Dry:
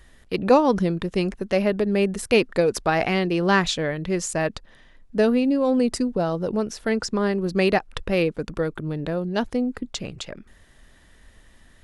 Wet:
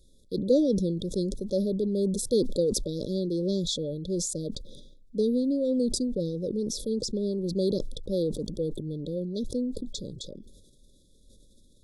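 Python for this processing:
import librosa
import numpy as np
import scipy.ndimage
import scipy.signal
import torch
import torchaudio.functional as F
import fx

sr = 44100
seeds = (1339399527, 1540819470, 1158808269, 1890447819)

y = fx.brickwall_bandstop(x, sr, low_hz=600.0, high_hz=3300.0)
y = fx.peak_eq(y, sr, hz=61.0, db=-6.5, octaves=1.2)
y = fx.sustainer(y, sr, db_per_s=43.0)
y = F.gain(torch.from_numpy(y), -5.5).numpy()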